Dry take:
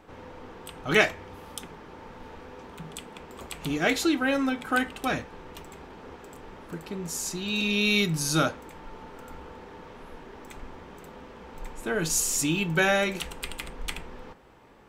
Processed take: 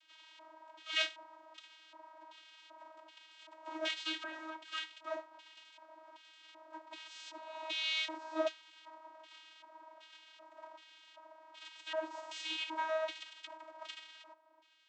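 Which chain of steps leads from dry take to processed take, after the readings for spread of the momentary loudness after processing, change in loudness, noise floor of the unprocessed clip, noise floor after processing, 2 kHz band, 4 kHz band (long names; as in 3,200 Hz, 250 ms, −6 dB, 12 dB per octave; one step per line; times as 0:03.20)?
21 LU, −13.0 dB, −47 dBFS, −62 dBFS, −14.0 dB, −7.0 dB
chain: spectral envelope flattened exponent 0.3
low shelf with overshoot 220 Hz +12 dB, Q 3
auto-filter band-pass square 1.3 Hz 750–3,100 Hz
channel vocoder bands 32, saw 317 Hz
level −4.5 dB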